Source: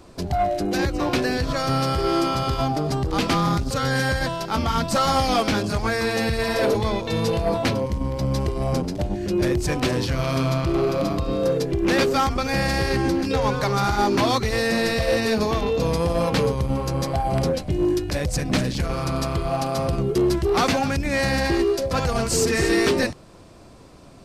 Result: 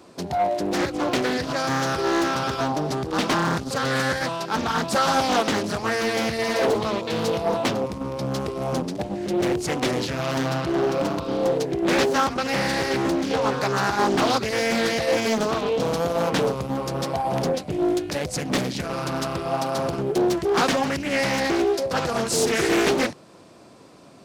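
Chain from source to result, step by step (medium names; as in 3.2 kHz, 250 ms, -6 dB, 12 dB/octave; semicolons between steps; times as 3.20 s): high-pass 170 Hz 12 dB/octave; loudspeaker Doppler distortion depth 0.63 ms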